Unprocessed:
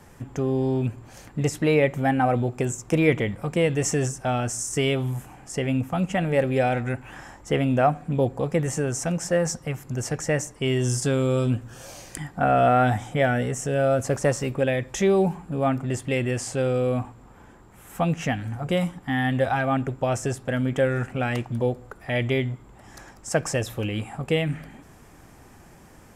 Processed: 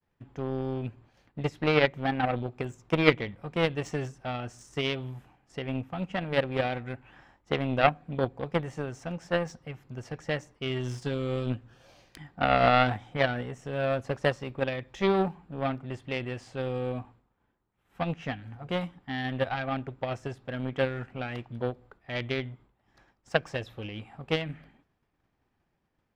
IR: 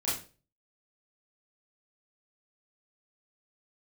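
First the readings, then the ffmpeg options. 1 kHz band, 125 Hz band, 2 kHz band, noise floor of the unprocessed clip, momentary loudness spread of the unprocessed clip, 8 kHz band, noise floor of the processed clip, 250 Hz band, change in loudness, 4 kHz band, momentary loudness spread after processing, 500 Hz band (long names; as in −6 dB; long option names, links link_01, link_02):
−4.5 dB, −8.5 dB, −3.0 dB, −50 dBFS, 10 LU, below −20 dB, −76 dBFS, −7.5 dB, −6.0 dB, −1.0 dB, 15 LU, −6.0 dB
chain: -af "agate=range=-33dB:threshold=-39dB:ratio=3:detection=peak,aeval=exprs='0.422*(cos(1*acos(clip(val(0)/0.422,-1,1)))-cos(1*PI/2))+0.119*(cos(3*acos(clip(val(0)/0.422,-1,1)))-cos(3*PI/2))':channel_layout=same,highshelf=frequency=5600:width_type=q:width=1.5:gain=-12.5,volume=3.5dB"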